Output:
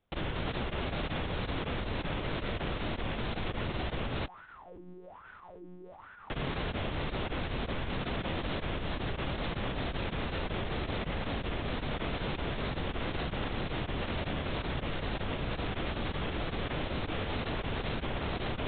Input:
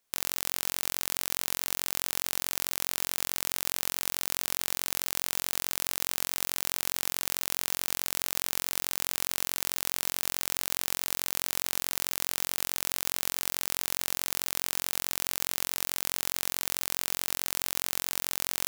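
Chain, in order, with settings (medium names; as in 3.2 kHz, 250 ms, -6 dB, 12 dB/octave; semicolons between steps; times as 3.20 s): tilt shelf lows +9 dB, about 640 Hz; 4.26–6.30 s: wah-wah 1.2 Hz 270–1500 Hz, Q 11; monotone LPC vocoder at 8 kHz 180 Hz; trim +7 dB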